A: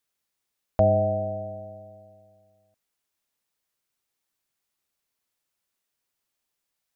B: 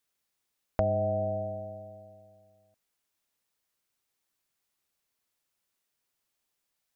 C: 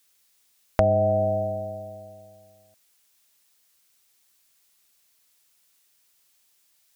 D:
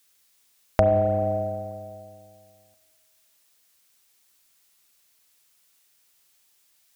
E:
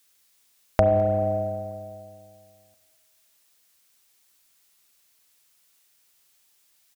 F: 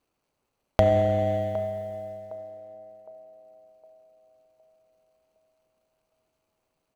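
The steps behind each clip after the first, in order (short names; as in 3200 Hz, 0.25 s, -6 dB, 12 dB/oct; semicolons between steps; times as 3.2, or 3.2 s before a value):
compressor 4:1, threshold -25 dBFS, peak gain reduction 8.5 dB
high shelf 2000 Hz +11 dB; gain +6.5 dB
spring tank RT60 2 s, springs 32/36/43 ms, chirp 65 ms, DRR 7.5 dB; gain +1 dB
echo 0.208 s -22 dB
median filter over 25 samples; narrowing echo 0.761 s, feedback 42%, band-pass 570 Hz, level -12.5 dB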